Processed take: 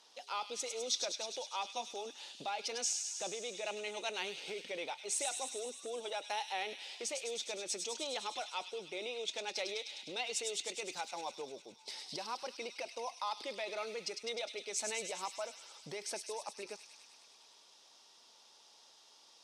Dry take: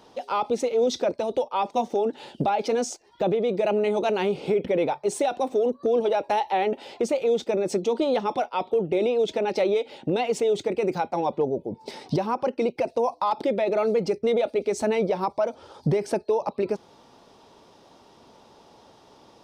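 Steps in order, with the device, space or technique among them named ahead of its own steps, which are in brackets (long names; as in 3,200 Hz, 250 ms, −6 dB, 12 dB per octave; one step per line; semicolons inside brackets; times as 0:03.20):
piezo pickup straight into a mixer (low-pass filter 7,500 Hz 12 dB per octave; first difference)
delay with a high-pass on its return 102 ms, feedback 75%, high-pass 3,100 Hz, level −4.5 dB
level +3 dB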